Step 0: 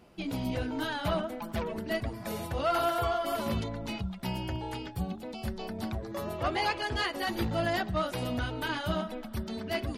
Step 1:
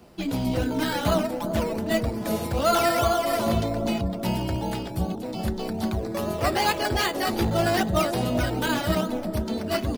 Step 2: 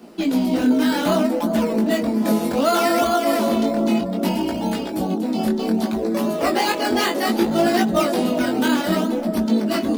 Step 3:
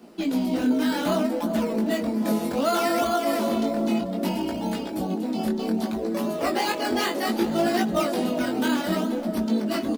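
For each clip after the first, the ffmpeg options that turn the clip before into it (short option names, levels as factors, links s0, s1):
-filter_complex "[0:a]acrossover=split=140|780|2400[s0][s1][s2][s3];[s1]aecho=1:1:382|764|1146|1528|1910|2292|2674:0.631|0.347|0.191|0.105|0.0577|0.0318|0.0175[s4];[s2]acrusher=samples=11:mix=1:aa=0.000001:lfo=1:lforange=6.6:lforate=2.5[s5];[s0][s4][s5][s3]amix=inputs=4:normalize=0,volume=2.24"
-filter_complex "[0:a]lowshelf=f=160:t=q:w=3:g=-13.5,asplit=2[s0][s1];[s1]alimiter=limit=0.133:level=0:latency=1:release=294,volume=1.41[s2];[s0][s2]amix=inputs=2:normalize=0,flanger=delay=17:depth=6.8:speed=0.64,volume=1.12"
-af "aecho=1:1:442|884|1326:0.0944|0.0425|0.0191,volume=0.562"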